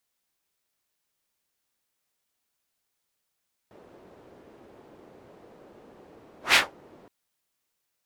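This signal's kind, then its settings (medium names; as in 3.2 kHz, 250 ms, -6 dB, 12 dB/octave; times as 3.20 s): whoosh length 3.37 s, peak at 2.84 s, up 0.15 s, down 0.18 s, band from 430 Hz, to 2.6 kHz, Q 1.3, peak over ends 35 dB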